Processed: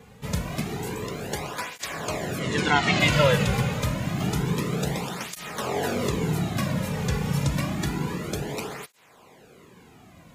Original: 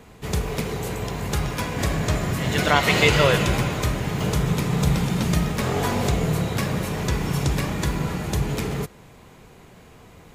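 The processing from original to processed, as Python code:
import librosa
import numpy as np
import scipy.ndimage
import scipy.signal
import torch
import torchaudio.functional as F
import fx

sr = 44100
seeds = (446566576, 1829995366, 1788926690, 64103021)

y = fx.lowpass(x, sr, hz=fx.line((2.39, 11000.0), (2.99, 6700.0)), slope=24, at=(2.39, 2.99), fade=0.02)
y = fx.flanger_cancel(y, sr, hz=0.28, depth_ms=3.2)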